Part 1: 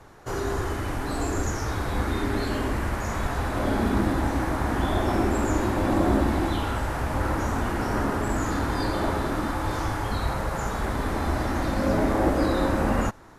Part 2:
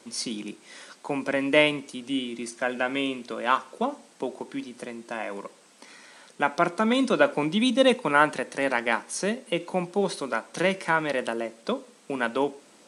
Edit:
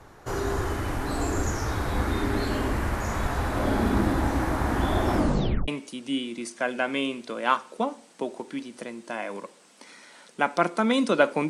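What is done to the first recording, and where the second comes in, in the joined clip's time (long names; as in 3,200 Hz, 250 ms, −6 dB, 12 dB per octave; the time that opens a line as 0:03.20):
part 1
0:05.15: tape stop 0.53 s
0:05.68: continue with part 2 from 0:01.69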